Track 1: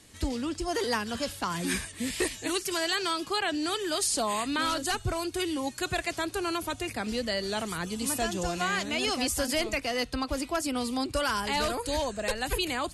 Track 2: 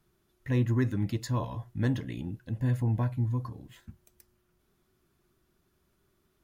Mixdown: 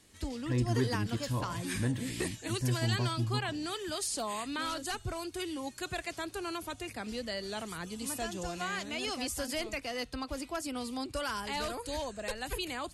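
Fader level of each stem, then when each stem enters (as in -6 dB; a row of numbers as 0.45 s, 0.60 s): -7.0 dB, -4.0 dB; 0.00 s, 0.00 s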